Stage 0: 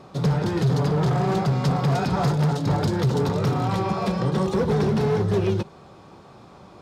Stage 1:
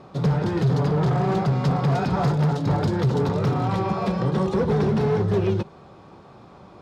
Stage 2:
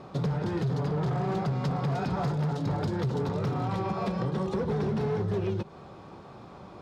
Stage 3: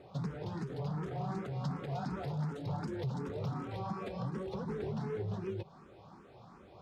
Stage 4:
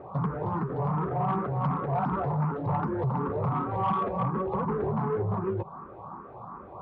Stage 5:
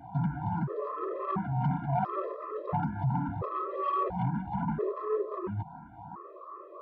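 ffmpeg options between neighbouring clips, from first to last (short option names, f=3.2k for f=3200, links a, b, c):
-af "aemphasis=mode=reproduction:type=cd"
-af "acompressor=threshold=-27dB:ratio=5"
-filter_complex "[0:a]asplit=2[a][b];[b]afreqshift=2.7[c];[a][c]amix=inputs=2:normalize=1,volume=-6dB"
-af "lowpass=f=1.1k:t=q:w=3.8,asoftclip=type=tanh:threshold=-26.5dB,volume=8.5dB"
-af "afftfilt=real='re*gt(sin(2*PI*0.73*pts/sr)*(1-2*mod(floor(b*sr/1024/340),2)),0)':imag='im*gt(sin(2*PI*0.73*pts/sr)*(1-2*mod(floor(b*sr/1024/340),2)),0)':win_size=1024:overlap=0.75"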